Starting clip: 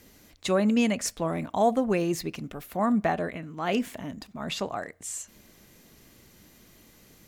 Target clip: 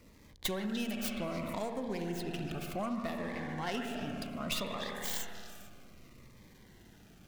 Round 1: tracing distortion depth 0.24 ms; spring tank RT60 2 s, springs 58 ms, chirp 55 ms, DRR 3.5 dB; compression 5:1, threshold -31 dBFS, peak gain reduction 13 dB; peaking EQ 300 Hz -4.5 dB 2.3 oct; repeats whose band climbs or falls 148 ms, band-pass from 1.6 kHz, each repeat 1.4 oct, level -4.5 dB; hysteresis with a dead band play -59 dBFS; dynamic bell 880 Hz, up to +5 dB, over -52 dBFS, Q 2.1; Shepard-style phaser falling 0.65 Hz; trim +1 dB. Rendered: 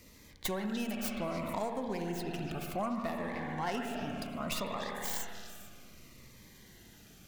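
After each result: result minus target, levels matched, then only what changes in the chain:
hysteresis with a dead band: distortion -9 dB; 4 kHz band -3.0 dB
change: hysteresis with a dead band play -49.5 dBFS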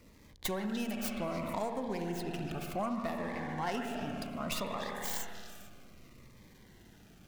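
4 kHz band -3.5 dB
change: dynamic bell 3.4 kHz, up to +5 dB, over -52 dBFS, Q 2.1

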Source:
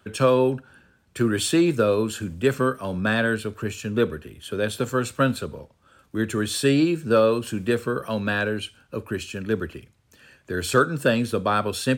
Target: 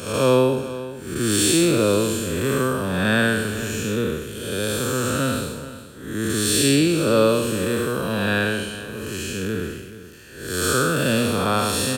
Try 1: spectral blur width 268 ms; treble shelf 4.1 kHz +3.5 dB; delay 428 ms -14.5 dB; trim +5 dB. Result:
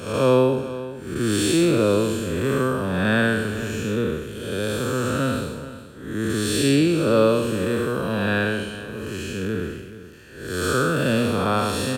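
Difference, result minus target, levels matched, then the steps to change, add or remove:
8 kHz band -6.5 dB
change: treble shelf 4.1 kHz +13 dB

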